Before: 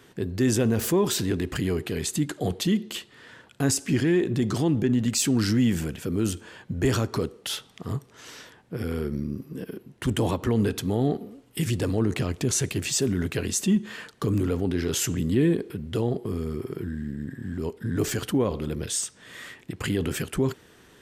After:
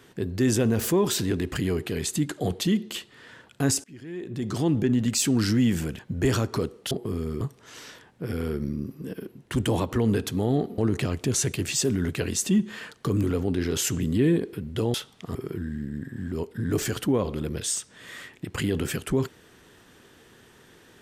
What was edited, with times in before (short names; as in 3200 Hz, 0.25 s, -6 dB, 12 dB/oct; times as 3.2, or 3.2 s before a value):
3.84–4.67 fade in quadratic, from -23.5 dB
5.99–6.59 cut
7.51–7.92 swap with 16.11–16.61
11.29–11.95 cut